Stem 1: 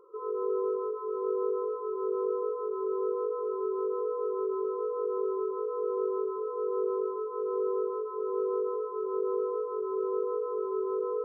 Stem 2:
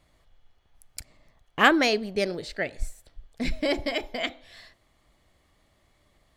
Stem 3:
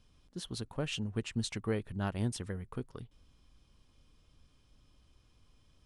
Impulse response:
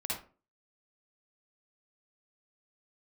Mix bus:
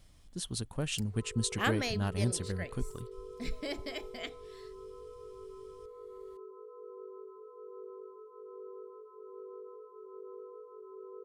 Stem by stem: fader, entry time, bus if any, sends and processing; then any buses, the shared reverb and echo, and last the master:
−18.5 dB, 1.00 s, no send, no processing
−5.5 dB, 0.00 s, no send, automatic ducking −9 dB, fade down 0.70 s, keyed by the third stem
−2.0 dB, 0.00 s, no send, parametric band 8,600 Hz +4.5 dB 0.59 octaves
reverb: not used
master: low-shelf EQ 200 Hz +7 dB; high-shelf EQ 4,100 Hz +9 dB

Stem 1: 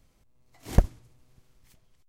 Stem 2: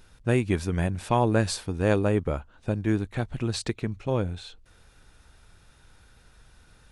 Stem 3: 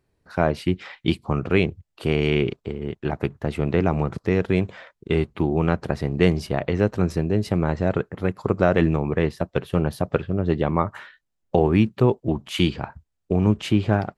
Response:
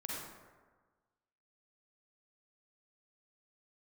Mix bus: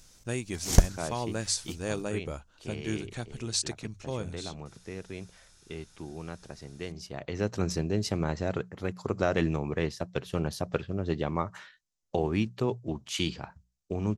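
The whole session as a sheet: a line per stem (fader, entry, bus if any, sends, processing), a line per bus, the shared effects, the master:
−0.5 dB, 0.00 s, no send, high-shelf EQ 9,100 Hz +7 dB
−12.5 dB, 0.00 s, no send, high-shelf EQ 8,300 Hz +8.5 dB; mains-hum notches 50/100 Hz
−8.5 dB, 0.60 s, no send, mains-hum notches 60/120/180 Hz; automatic ducking −15 dB, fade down 2.00 s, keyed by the second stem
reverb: not used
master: parametric band 6,100 Hz +15 dB 1.3 octaves; speech leveller within 4 dB 2 s

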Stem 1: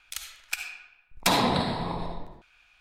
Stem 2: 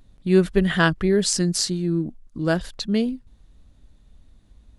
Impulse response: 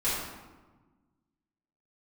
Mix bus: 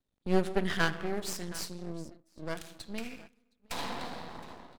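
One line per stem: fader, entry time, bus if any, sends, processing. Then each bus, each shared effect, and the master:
−18.0 dB, 2.45 s, send −12.5 dB, echo send −18.5 dB, high-shelf EQ 9,100 Hz −6.5 dB; leveller curve on the samples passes 2
0:00.75 −4.5 dB → 0:01.25 −12 dB, 0.00 s, send −20 dB, echo send −18 dB, no processing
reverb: on, RT60 1.3 s, pre-delay 4 ms
echo: single-tap delay 716 ms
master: noise gate −43 dBFS, range −13 dB; high-pass filter 220 Hz 6 dB per octave; half-wave rectification

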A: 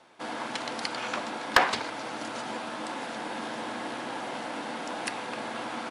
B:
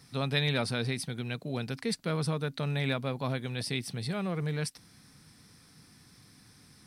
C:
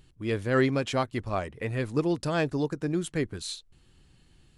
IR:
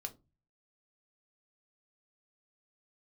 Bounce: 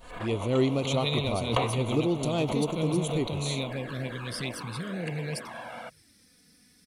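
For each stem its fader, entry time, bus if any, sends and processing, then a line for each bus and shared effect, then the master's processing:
−1.5 dB, 0.00 s, no send, moving average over 8 samples; comb filter 1.8 ms, depth 43%
−1.5 dB, 0.70 s, no send, octave-band graphic EQ 500/1,000/2,000 Hz +4/−11/+4 dB
0.0 dB, 0.00 s, no send, no processing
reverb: not used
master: high-shelf EQ 5,700 Hz +6 dB; flanger swept by the level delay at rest 4.6 ms, full sweep at −26.5 dBFS; background raised ahead of every attack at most 86 dB per second

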